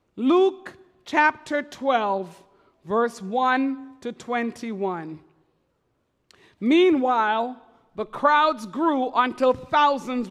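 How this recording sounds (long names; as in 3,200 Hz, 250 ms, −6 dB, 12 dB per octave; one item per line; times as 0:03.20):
background noise floor −71 dBFS
spectral slope −2.5 dB per octave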